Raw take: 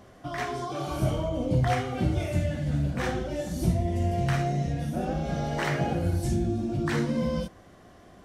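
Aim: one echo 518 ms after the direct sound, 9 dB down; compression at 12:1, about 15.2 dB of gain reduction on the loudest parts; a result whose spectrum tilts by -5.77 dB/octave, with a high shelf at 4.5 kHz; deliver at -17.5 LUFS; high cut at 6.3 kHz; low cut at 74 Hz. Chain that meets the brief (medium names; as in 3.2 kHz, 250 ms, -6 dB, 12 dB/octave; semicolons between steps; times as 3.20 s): high-pass 74 Hz; low-pass 6.3 kHz; treble shelf 4.5 kHz -7 dB; compression 12:1, threshold -36 dBFS; delay 518 ms -9 dB; trim +22.5 dB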